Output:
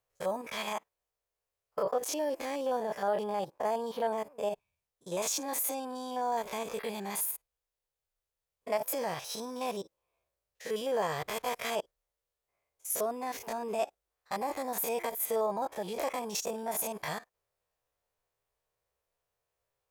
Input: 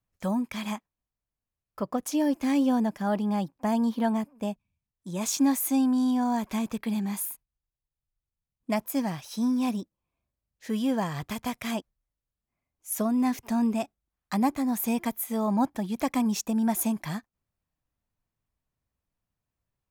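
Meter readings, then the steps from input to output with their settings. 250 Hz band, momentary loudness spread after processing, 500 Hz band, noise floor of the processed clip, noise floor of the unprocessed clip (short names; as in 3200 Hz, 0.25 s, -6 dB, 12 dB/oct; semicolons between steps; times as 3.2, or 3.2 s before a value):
-18.0 dB, 7 LU, +2.0 dB, under -85 dBFS, under -85 dBFS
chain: stepped spectrum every 50 ms; limiter -26.5 dBFS, peak gain reduction 11.5 dB; resonant low shelf 340 Hz -10.5 dB, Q 3; gain +4.5 dB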